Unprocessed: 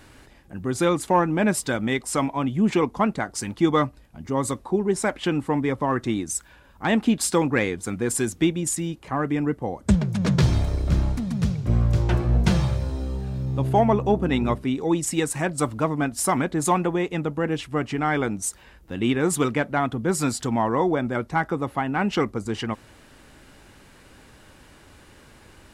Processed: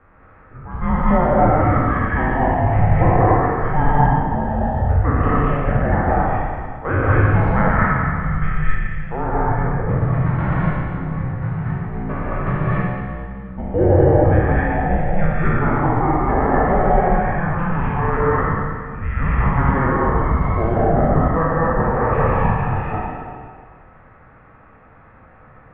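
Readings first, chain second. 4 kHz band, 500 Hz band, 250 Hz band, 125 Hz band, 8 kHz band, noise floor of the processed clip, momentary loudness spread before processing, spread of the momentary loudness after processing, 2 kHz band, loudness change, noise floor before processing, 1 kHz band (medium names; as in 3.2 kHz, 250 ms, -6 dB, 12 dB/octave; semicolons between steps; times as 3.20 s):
under -15 dB, +5.0 dB, +1.5 dB, +7.5 dB, under -40 dB, -47 dBFS, 8 LU, 10 LU, +5.5 dB, +5.0 dB, -51 dBFS, +8.0 dB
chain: spectral sustain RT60 2.03 s; gated-style reverb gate 280 ms rising, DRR -5 dB; mistuned SSB -320 Hz 180–2200 Hz; trim -2 dB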